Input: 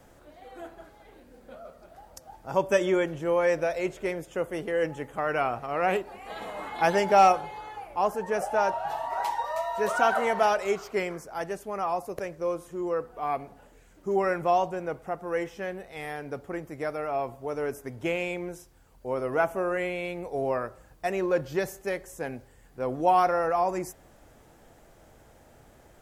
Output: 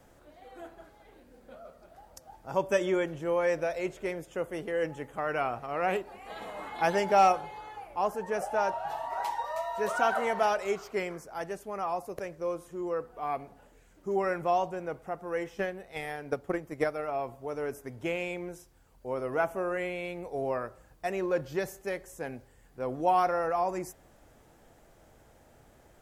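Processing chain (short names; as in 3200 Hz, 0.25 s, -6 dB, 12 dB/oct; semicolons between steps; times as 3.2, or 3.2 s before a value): 15.55–17.1 transient shaper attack +11 dB, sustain -1 dB; gain -3.5 dB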